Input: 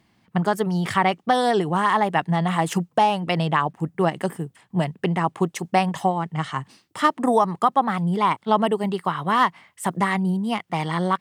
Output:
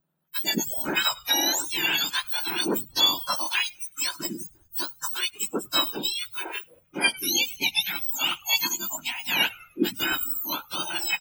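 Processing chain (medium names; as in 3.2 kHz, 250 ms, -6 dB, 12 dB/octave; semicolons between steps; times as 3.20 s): spectrum inverted on a logarithmic axis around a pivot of 1.7 kHz; bass shelf 240 Hz +9.5 dB; on a send: frequency-shifting echo 101 ms, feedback 62%, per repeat -83 Hz, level -21 dB; on the sum: spectral noise reduction 17 dB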